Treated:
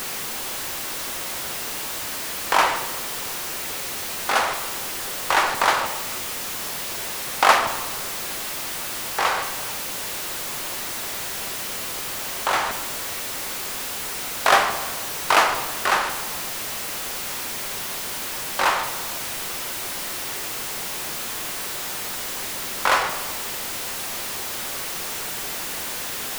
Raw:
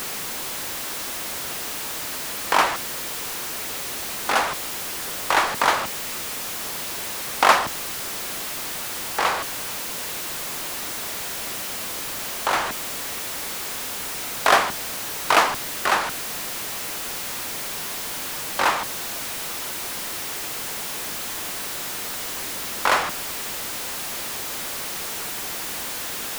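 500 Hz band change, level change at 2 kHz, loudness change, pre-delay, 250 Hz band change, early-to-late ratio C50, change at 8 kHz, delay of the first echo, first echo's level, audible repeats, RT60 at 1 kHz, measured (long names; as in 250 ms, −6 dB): 0.0 dB, +1.0 dB, +0.5 dB, 5 ms, −1.0 dB, 9.0 dB, +0.5 dB, no echo audible, no echo audible, no echo audible, 1.4 s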